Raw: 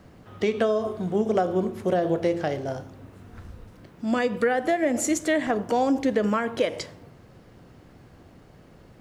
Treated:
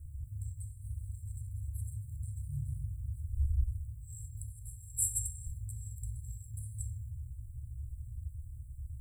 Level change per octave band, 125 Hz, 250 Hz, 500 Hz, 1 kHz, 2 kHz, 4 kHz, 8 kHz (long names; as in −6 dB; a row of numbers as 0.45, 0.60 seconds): +0.5 dB, below −30 dB, below −40 dB, below −40 dB, below −40 dB, below −40 dB, −1.5 dB